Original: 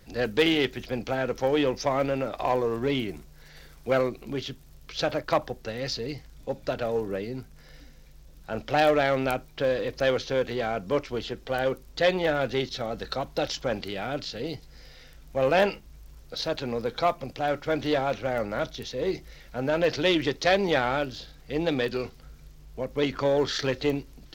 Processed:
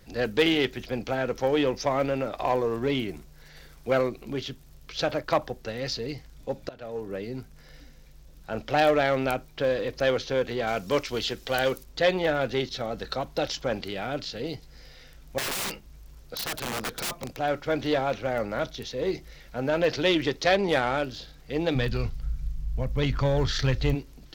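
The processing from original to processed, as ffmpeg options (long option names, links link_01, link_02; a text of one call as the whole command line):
ffmpeg -i in.wav -filter_complex "[0:a]asettb=1/sr,asplit=3[link_01][link_02][link_03];[link_01]atrim=end=10.674[link_04];[link_02]atrim=start=10.67:end=11.84,asetpts=PTS-STARTPTS,afade=type=in:duration=0.004:curve=qsin,afade=type=out:start_time=1.166:duration=0.004:curve=qsin,highshelf=frequency=2400:gain=12[link_05];[link_03]atrim=start=11.836[link_06];[link_04][link_05]acrossfade=duration=0.004:curve1=hsin:curve2=qsin[link_07];[link_07][link_06]acrossfade=duration=0.004:curve1=qsin:curve2=hsin,asettb=1/sr,asplit=3[link_08][link_09][link_10];[link_08]atrim=end=15.384[link_11];[link_09]atrim=start=15.38:end=17.37,asetpts=PTS-STARTPTS,afade=type=in:duration=0.004:curve=qsin,afade=type=out:start_time=1.986:duration=0.004:curve=qsin,aeval=exprs='(mod(18.8*val(0)+1,2)-1)/18.8':channel_layout=same[link_12];[link_10]atrim=start=17.366[link_13];[link_11][link_12]acrossfade=duration=0.004:curve1=hsin:curve2=qsin[link_14];[link_14][link_13]acrossfade=duration=0.004:curve1=qsin:curve2=hsin,asettb=1/sr,asplit=3[link_15][link_16][link_17];[link_15]atrim=end=20.564[link_18];[link_16]atrim=start=20.56:end=21.03,asetpts=PTS-STARTPTS,afade=type=in:duration=0.004:curve=qsin,afade=type=out:start_time=0.466:duration=0.004:curve=qsin,adynamicsmooth=sensitivity=7.5:basefreq=4300[link_19];[link_17]atrim=start=21.026[link_20];[link_18][link_19]acrossfade=duration=0.004:curve1=hsin:curve2=qsin[link_21];[link_21][link_20]acrossfade=duration=0.004:curve1=qsin:curve2=hsin,asplit=3[link_22][link_23][link_24];[link_22]afade=type=out:start_time=21.74:duration=0.02[link_25];[link_23]asubboost=boost=9.5:cutoff=110,afade=type=in:start_time=21.74:duration=0.02,afade=type=out:start_time=23.94:duration=0.02[link_26];[link_24]afade=type=in:start_time=23.94:duration=0.02[link_27];[link_25][link_26][link_27]amix=inputs=3:normalize=0,asplit=2[link_28][link_29];[link_28]atrim=end=6.69,asetpts=PTS-STARTPTS,afade=type=out:start_time=6.686:duration=0.004:curve=hsin:silence=0.105925[link_30];[link_29]atrim=start=6.69,asetpts=PTS-STARTPTS,afade=type=in:duration=0.67:silence=0.105925[link_31];[link_30][link_31]concat=n=2:v=0:a=1" out.wav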